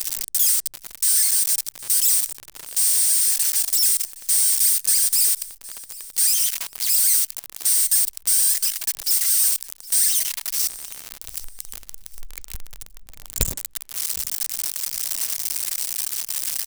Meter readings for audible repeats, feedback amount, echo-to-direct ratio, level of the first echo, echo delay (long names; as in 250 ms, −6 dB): 2, 28%, −19.5 dB, −20.0 dB, 765 ms